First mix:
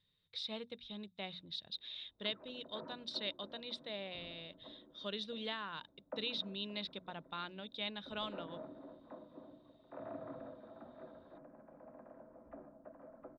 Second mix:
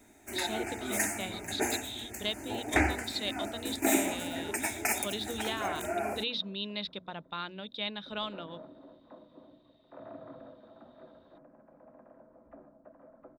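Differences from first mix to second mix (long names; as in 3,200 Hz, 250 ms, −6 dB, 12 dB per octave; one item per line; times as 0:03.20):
speech +5.5 dB
first sound: unmuted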